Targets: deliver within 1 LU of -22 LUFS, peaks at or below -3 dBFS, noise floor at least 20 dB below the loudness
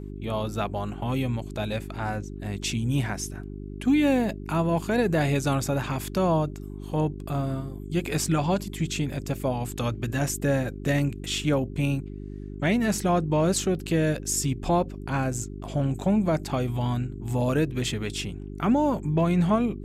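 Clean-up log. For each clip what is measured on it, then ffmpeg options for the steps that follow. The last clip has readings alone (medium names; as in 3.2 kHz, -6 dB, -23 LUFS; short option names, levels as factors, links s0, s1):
hum 50 Hz; highest harmonic 400 Hz; hum level -35 dBFS; loudness -26.5 LUFS; peak level -13.0 dBFS; loudness target -22.0 LUFS
-> -af "bandreject=f=50:t=h:w=4,bandreject=f=100:t=h:w=4,bandreject=f=150:t=h:w=4,bandreject=f=200:t=h:w=4,bandreject=f=250:t=h:w=4,bandreject=f=300:t=h:w=4,bandreject=f=350:t=h:w=4,bandreject=f=400:t=h:w=4"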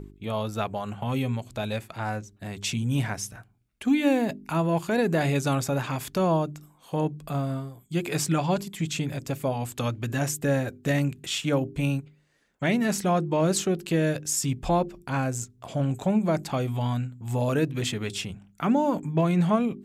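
hum not found; loudness -27.0 LUFS; peak level -11.5 dBFS; loudness target -22.0 LUFS
-> -af "volume=1.78"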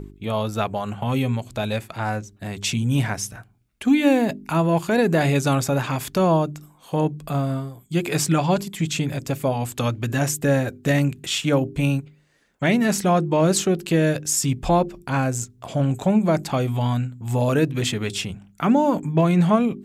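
loudness -22.0 LUFS; peak level -6.5 dBFS; noise floor -55 dBFS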